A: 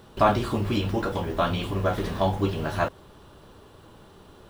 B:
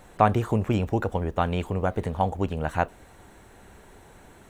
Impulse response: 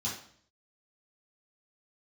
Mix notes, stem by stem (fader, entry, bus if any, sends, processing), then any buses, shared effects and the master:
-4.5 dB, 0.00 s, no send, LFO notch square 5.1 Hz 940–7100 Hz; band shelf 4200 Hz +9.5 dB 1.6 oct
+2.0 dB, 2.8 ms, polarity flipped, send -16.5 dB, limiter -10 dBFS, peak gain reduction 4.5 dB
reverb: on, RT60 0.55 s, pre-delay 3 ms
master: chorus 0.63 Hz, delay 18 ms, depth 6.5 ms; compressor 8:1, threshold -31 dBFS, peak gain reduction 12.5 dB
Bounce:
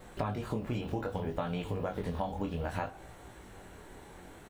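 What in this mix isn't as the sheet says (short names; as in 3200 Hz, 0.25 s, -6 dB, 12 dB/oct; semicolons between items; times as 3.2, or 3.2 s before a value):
stem A: missing band shelf 4200 Hz +9.5 dB 1.6 oct; stem B: polarity flipped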